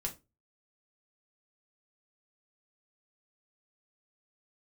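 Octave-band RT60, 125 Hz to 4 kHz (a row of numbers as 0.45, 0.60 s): 0.40, 0.30, 0.30, 0.20, 0.20, 0.20 s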